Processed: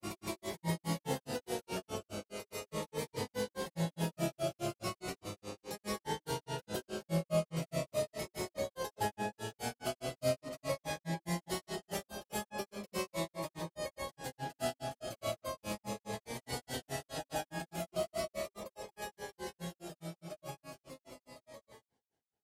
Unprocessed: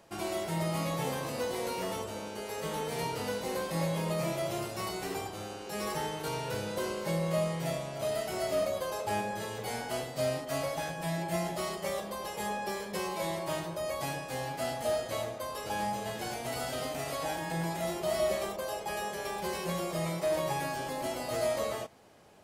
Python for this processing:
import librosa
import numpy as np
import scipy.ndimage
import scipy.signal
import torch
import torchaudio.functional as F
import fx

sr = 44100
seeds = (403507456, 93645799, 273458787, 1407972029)

y = fx.fade_out_tail(x, sr, length_s=5.55)
y = fx.vibrato(y, sr, rate_hz=0.34, depth_cents=21.0)
y = fx.granulator(y, sr, seeds[0], grain_ms=160.0, per_s=4.8, spray_ms=100.0, spread_st=0)
y = fx.notch_cascade(y, sr, direction='falling', hz=0.38)
y = y * 10.0 ** (2.0 / 20.0)